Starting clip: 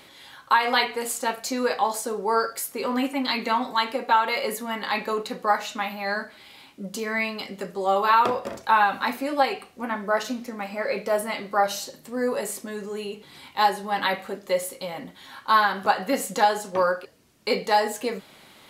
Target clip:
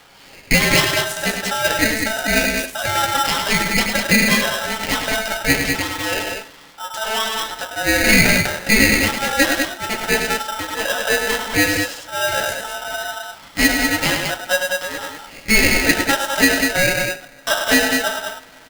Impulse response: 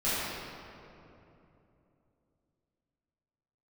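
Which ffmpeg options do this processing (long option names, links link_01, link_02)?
-filter_complex "[0:a]adynamicsmooth=sensitivity=8:basefreq=2800,aecho=1:1:102|198.3:0.501|0.562,asplit=2[link_01][link_02];[1:a]atrim=start_sample=2205,adelay=35[link_03];[link_02][link_03]afir=irnorm=-1:irlink=0,volume=-34dB[link_04];[link_01][link_04]amix=inputs=2:normalize=0,aeval=exprs='val(0)*sgn(sin(2*PI*1100*n/s))':channel_layout=same,volume=4.5dB"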